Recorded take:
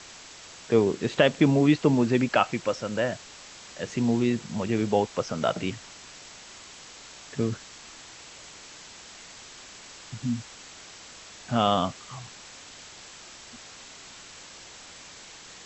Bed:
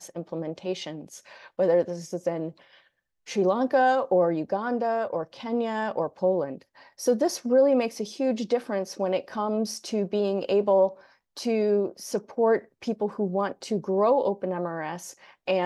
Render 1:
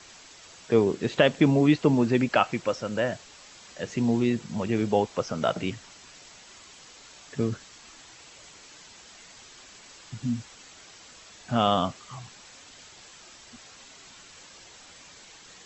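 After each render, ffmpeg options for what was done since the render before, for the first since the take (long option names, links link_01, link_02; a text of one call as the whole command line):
ffmpeg -i in.wav -af "afftdn=noise_reduction=6:noise_floor=-47" out.wav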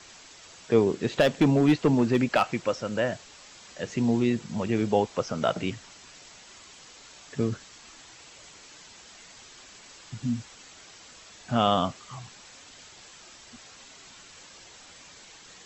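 ffmpeg -i in.wav -filter_complex "[0:a]asettb=1/sr,asplit=3[link_01][link_02][link_03];[link_01]atrim=end=0.864[link_04];[link_02]atrim=start=0.86:end=2.6,asetpts=PTS-STARTPTS,afade=type=in:duration=0.004:curve=qsin,afade=type=out:start_time=1.736:duration=0.004:curve=qsin,asoftclip=type=hard:threshold=-14dB[link_05];[link_03]atrim=start=2.596[link_06];[link_04][link_05]acrossfade=duration=0.004:curve1=hsin:curve2=qsin[link_07];[link_07][link_06]acrossfade=duration=0.004:curve1=qsin:curve2=hsin" out.wav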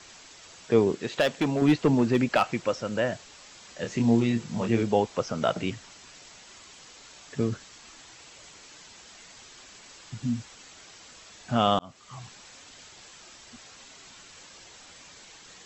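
ffmpeg -i in.wav -filter_complex "[0:a]asettb=1/sr,asplit=3[link_01][link_02][link_03];[link_01]atrim=end=0.954[link_04];[link_02]atrim=start=0.95:end=1.62,asetpts=PTS-STARTPTS,afade=type=in:duration=0.004:curve=qsin,afade=type=out:start_time=0.666:duration=0.004:curve=qsin,lowshelf=frequency=400:gain=-8.5[link_05];[link_03]atrim=start=1.616[link_06];[link_04][link_05]acrossfade=duration=0.004:curve1=hsin:curve2=qsin[link_07];[link_07][link_06]acrossfade=duration=0.004:curve1=qsin:curve2=hsin,asettb=1/sr,asplit=3[link_08][link_09][link_10];[link_08]atrim=end=3.794[link_11];[link_09]atrim=start=3.79:end=4.83,asetpts=PTS-STARTPTS,afade=type=in:duration=0.004:curve=qsin,afade=type=out:start_time=1.036:duration=0.004:curve=qsin,asplit=2[link_12][link_13];[link_13]adelay=26,volume=-5dB[link_14];[link_12][link_14]amix=inputs=2:normalize=0,atrim=end_sample=45864[link_15];[link_10]atrim=start=4.826[link_16];[link_11][link_15]acrossfade=duration=0.004:curve1=hsin:curve2=qsin[link_17];[link_17][link_16]acrossfade=duration=0.004:curve1=qsin:curve2=hsin,asplit=2[link_18][link_19];[link_18]atrim=end=11.79,asetpts=PTS-STARTPTS,afade=type=out:start_time=11.786:duration=0.004:curve=hsin[link_20];[link_19]atrim=start=11.79,asetpts=PTS-STARTPTS,afade=type=in:duration=0.45[link_21];[link_20][link_21]concat=n=2:v=0:a=1" out.wav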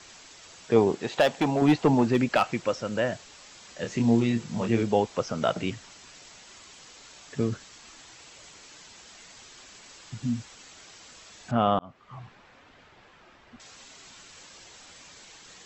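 ffmpeg -i in.wav -filter_complex "[0:a]asettb=1/sr,asplit=3[link_01][link_02][link_03];[link_01]atrim=end=0.764[link_04];[link_02]atrim=start=0.76:end=2.07,asetpts=PTS-STARTPTS,afade=type=in:duration=0.004:curve=qsin,afade=type=out:start_time=1.306:duration=0.004:curve=qsin,equalizer=frequency=800:width=2.5:gain=9[link_05];[link_03]atrim=start=2.066[link_06];[link_04][link_05]acrossfade=duration=0.004:curve1=hsin:curve2=qsin[link_07];[link_07][link_06]acrossfade=duration=0.004:curve1=qsin:curve2=hsin,asettb=1/sr,asplit=3[link_08][link_09][link_10];[link_08]atrim=end=11.514[link_11];[link_09]atrim=start=11.51:end=13.6,asetpts=PTS-STARTPTS,afade=type=in:duration=0.004:curve=qsin,afade=type=out:start_time=2.086:duration=0.004:curve=qsin,lowpass=2000[link_12];[link_10]atrim=start=13.596[link_13];[link_11][link_12]acrossfade=duration=0.004:curve1=hsin:curve2=qsin[link_14];[link_14][link_13]acrossfade=duration=0.004:curve1=qsin:curve2=hsin" out.wav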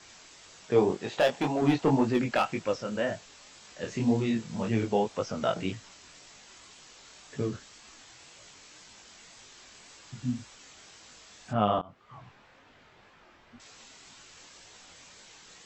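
ffmpeg -i in.wav -af "flanger=delay=18.5:depth=5.8:speed=1.9" out.wav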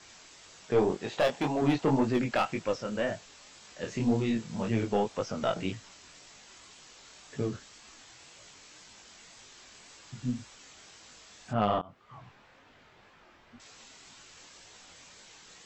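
ffmpeg -i in.wav -af "aeval=exprs='(tanh(6.31*val(0)+0.3)-tanh(0.3))/6.31':channel_layout=same" out.wav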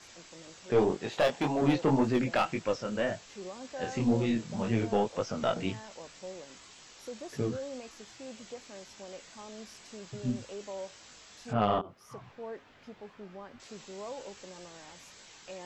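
ffmpeg -i in.wav -i bed.wav -filter_complex "[1:a]volume=-20dB[link_01];[0:a][link_01]amix=inputs=2:normalize=0" out.wav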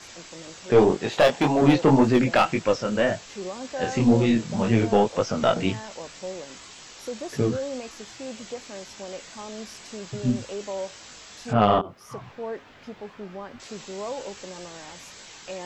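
ffmpeg -i in.wav -af "volume=8.5dB" out.wav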